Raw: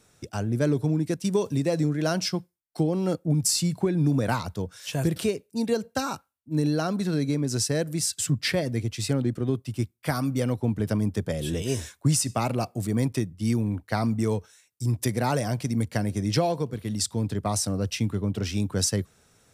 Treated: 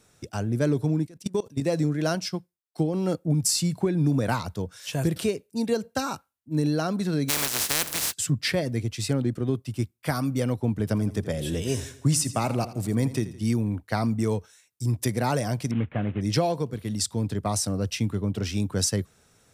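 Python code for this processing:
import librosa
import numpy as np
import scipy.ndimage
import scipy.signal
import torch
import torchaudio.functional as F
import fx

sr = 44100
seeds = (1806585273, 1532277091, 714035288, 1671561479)

y = fx.level_steps(x, sr, step_db=23, at=(1.05, 1.6), fade=0.02)
y = fx.upward_expand(y, sr, threshold_db=-33.0, expansion=1.5, at=(2.15, 2.94))
y = fx.spec_flatten(y, sr, power=0.16, at=(7.28, 8.12), fade=0.02)
y = fx.echo_feedback(y, sr, ms=83, feedback_pct=49, wet_db=-15.0, at=(10.89, 13.45), fade=0.02)
y = fx.cvsd(y, sr, bps=16000, at=(15.71, 16.21))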